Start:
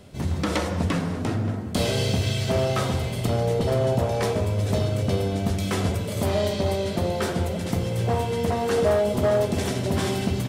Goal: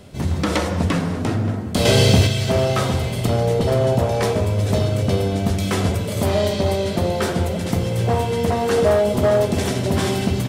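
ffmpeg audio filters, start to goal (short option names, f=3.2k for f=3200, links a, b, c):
-filter_complex "[0:a]asettb=1/sr,asplit=3[a][b][c];[a]atrim=end=1.854[d];[b]atrim=start=1.85:end=2.27,asetpts=PTS-STARTPTS,afade=t=in:d=0.004:c=qsin,afade=t=out:st=0.416:d=0.004:c=qsin,acontrast=43[e];[c]atrim=start=2.266[f];[d][e]acrossfade=d=0.004:c1=hsin:c2=qsin[g];[g][f]acrossfade=d=0.004:c1=qsin:c2=hsin,volume=4.5dB"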